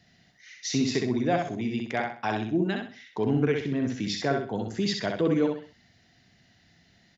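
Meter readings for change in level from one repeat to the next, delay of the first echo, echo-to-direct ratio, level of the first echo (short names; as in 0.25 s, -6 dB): -9.5 dB, 64 ms, -3.5 dB, -4.0 dB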